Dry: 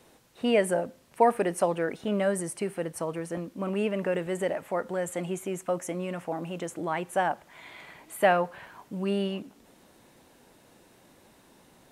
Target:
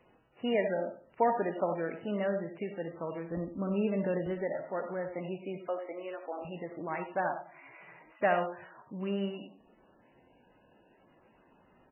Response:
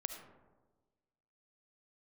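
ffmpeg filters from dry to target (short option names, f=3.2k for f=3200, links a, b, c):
-filter_complex "[0:a]asplit=3[a][b][c];[a]afade=t=out:st=3.3:d=0.02[d];[b]aemphasis=mode=reproduction:type=bsi,afade=t=in:st=3.3:d=0.02,afade=t=out:st=4.32:d=0.02[e];[c]afade=t=in:st=4.32:d=0.02[f];[d][e][f]amix=inputs=3:normalize=0,asettb=1/sr,asplit=3[g][h][i];[g]atrim=end=5.584[j];[h]atrim=start=5.58:end=6.45,asetpts=PTS-STARTPTS,afade=t=in:d=0.004:c=qsin,afade=t=out:st=0.866:d=0.004:c=qsin,highpass=f=340:w=0.5412,highpass=f=340:w=1.3066[k];[i]atrim=start=6.446[l];[j][k]acrossfade=d=0.004:c1=hsin:c2=qsin[m];[m][l]acrossfade=d=0.004:c1=qsin:c2=hsin,asplit=2[n][o];[o]adelay=96,lowpass=f=2k:p=1,volume=-14dB,asplit=2[p][q];[q]adelay=96,lowpass=f=2k:p=1,volume=0.26,asplit=2[r][s];[s]adelay=96,lowpass=f=2k:p=1,volume=0.26[t];[n][p][r][t]amix=inputs=4:normalize=0[u];[1:a]atrim=start_sample=2205,afade=t=out:st=0.15:d=0.01,atrim=end_sample=7056[v];[u][v]afir=irnorm=-1:irlink=0,volume=-3.5dB" -ar 12000 -c:a libmp3lame -b:a 8k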